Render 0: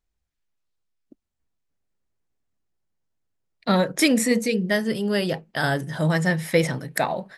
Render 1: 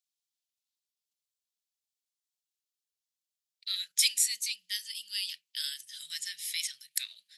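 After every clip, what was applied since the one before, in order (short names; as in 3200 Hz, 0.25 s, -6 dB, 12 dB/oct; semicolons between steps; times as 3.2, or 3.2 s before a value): inverse Chebyshev high-pass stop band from 930 Hz, stop band 60 dB; gain +1.5 dB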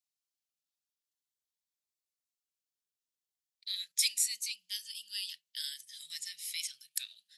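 cascading phaser rising 0.48 Hz; gain -3.5 dB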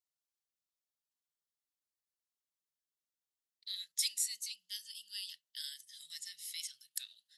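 notch 2400 Hz, Q 6.2; gain -4.5 dB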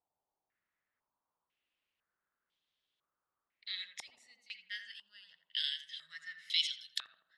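tape echo 84 ms, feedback 60%, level -4 dB, low-pass 1100 Hz; stepped low-pass 2 Hz 820–3400 Hz; gain +7 dB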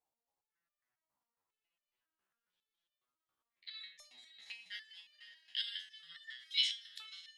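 diffused feedback echo 0.556 s, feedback 50%, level -12 dB; chopper 8.3 Hz, depth 65%, duty 85%; stepped resonator 7.3 Hz 66–600 Hz; gain +8 dB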